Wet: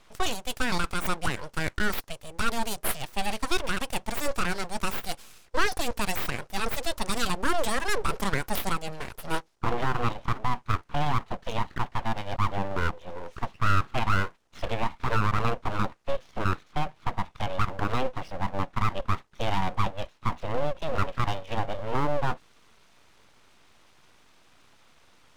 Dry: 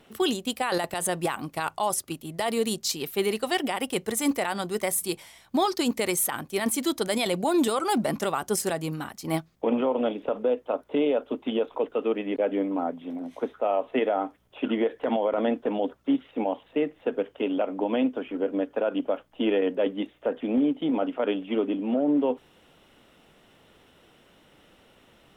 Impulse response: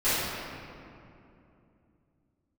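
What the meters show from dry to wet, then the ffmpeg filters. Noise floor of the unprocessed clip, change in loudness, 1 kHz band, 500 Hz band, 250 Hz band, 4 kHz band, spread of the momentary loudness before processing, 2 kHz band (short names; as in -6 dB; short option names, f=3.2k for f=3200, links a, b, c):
-59 dBFS, -3.0 dB, +2.0 dB, -8.0 dB, -9.0 dB, -1.0 dB, 6 LU, +4.0 dB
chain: -af "highpass=140,equalizer=f=160:t=q:w=4:g=-5,equalizer=f=700:t=q:w=4:g=8,equalizer=f=5.6k:t=q:w=4:g=7,equalizer=f=8.8k:t=q:w=4:g=3,lowpass=f=9.5k:w=0.5412,lowpass=f=9.5k:w=1.3066,aeval=exprs='abs(val(0))':c=same"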